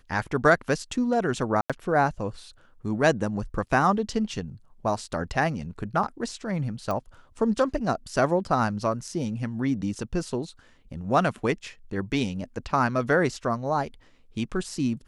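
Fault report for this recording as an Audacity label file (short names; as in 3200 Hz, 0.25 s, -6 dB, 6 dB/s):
1.610000	1.700000	gap 86 ms
6.910000	6.910000	pop -17 dBFS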